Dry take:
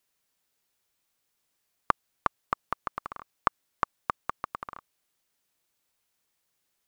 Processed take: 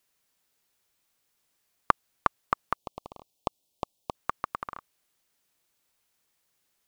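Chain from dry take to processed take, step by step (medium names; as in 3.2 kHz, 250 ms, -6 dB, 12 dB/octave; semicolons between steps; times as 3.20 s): 2.75–4.15 s: Chebyshev band-stop 750–3200 Hz, order 2; trim +2.5 dB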